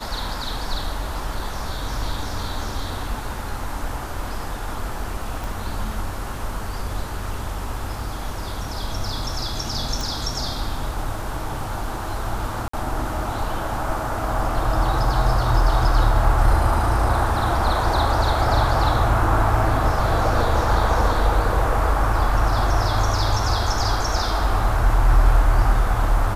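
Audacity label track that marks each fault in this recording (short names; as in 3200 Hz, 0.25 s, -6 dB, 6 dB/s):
5.440000	5.440000	pop
10.010000	10.010000	pop
12.680000	12.730000	gap 54 ms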